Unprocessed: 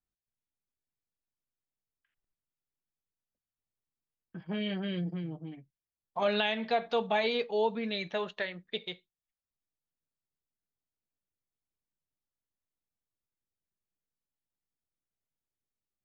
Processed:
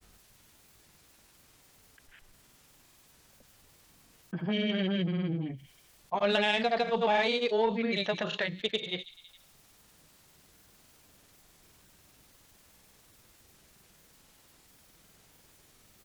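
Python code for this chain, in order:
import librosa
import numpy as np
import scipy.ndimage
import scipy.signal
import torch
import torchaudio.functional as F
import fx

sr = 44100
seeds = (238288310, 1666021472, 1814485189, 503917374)

y = fx.cheby_harmonics(x, sr, harmonics=(3,), levels_db=(-20,), full_scale_db=-17.0)
y = fx.echo_wet_highpass(y, sr, ms=79, feedback_pct=43, hz=4300.0, wet_db=-15.0)
y = fx.granulator(y, sr, seeds[0], grain_ms=100.0, per_s=20.0, spray_ms=100.0, spread_st=0)
y = fx.env_flatten(y, sr, amount_pct=50)
y = y * 10.0 ** (3.0 / 20.0)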